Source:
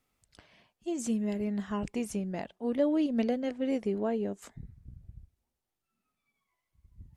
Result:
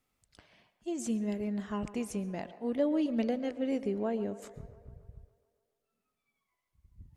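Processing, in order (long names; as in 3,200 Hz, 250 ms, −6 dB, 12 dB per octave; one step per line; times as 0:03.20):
delay with a band-pass on its return 140 ms, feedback 65%, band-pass 830 Hz, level −14 dB
on a send at −17.5 dB: convolution reverb RT60 1.0 s, pre-delay 115 ms
on the sum: level −2 dB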